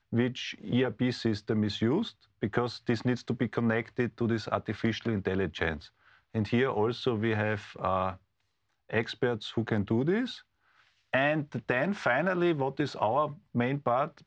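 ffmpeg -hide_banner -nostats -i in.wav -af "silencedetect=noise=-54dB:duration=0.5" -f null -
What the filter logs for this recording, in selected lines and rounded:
silence_start: 8.17
silence_end: 8.89 | silence_duration: 0.72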